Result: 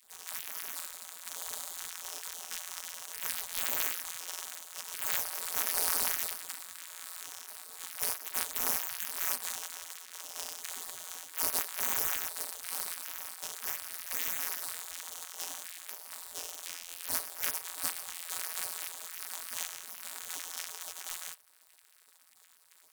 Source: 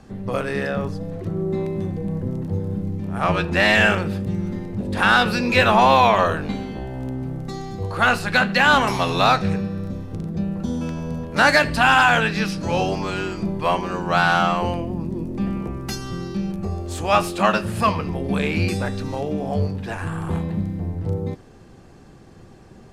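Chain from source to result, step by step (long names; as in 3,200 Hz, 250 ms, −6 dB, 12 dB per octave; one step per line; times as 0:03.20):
samples sorted by size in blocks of 256 samples
gate on every frequency bin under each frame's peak −30 dB weak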